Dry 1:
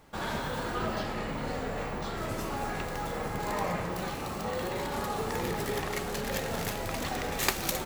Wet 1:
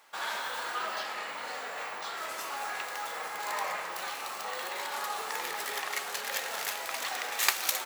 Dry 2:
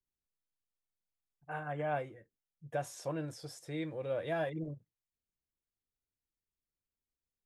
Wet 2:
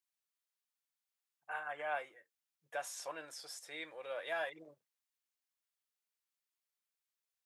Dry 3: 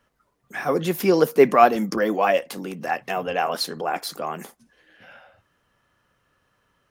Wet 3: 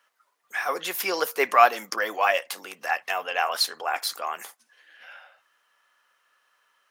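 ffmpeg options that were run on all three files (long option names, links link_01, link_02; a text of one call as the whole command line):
ffmpeg -i in.wav -af "highpass=970,volume=3dB" out.wav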